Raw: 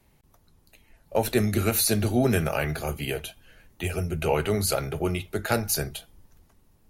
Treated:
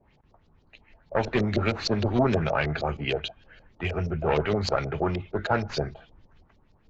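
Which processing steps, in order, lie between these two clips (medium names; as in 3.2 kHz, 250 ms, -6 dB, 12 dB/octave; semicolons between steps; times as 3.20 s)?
one-sided clip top -24.5 dBFS, bottom -13 dBFS; LFO low-pass saw up 6.4 Hz 510–4900 Hz; Vorbis 64 kbps 16 kHz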